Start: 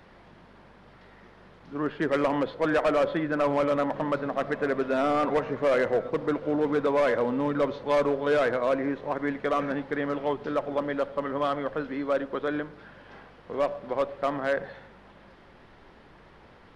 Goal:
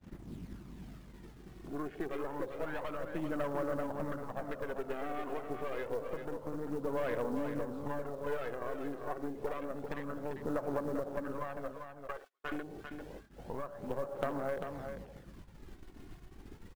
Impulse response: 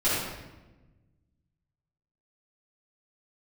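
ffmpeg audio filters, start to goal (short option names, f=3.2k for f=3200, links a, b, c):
-filter_complex "[0:a]aeval=exprs='val(0)+0.5*0.0188*sgn(val(0))':c=same,asettb=1/sr,asplit=3[a][b][c];[a]atrim=end=11.714[d];[b]atrim=start=11.71:end=12.52,asetpts=PTS-STARTPTS,afade=t=in:d=0.004:c=qsin,afade=t=out:st=0.806:d=0.004:c=qsin,highpass=1k[e];[c]atrim=start=12.516[f];[d][e]acrossfade=d=0.004:c1=hsin:c2=qsin[g];[g][f]acrossfade=d=0.004:c1=qsin:c2=hsin,afwtdn=0.0282,agate=range=-31dB:threshold=-44dB:ratio=16:detection=peak,acompressor=threshold=-32dB:ratio=10,aeval=exprs='0.0891*(cos(1*acos(clip(val(0)/0.0891,-1,1)))-cos(1*PI/2))+0.00708*(cos(3*acos(clip(val(0)/0.0891,-1,1)))-cos(3*PI/2))+0.0158*(cos(4*acos(clip(val(0)/0.0891,-1,1)))-cos(4*PI/2))+0.00141*(cos(6*acos(clip(val(0)/0.0891,-1,1)))-cos(6*PI/2))':c=same,aphaser=in_gain=1:out_gain=1:delay=2.8:decay=0.45:speed=0.28:type=sinusoidal,acrusher=bits=7:mode=log:mix=0:aa=0.000001,aecho=1:1:395:0.447,volume=-3.5dB"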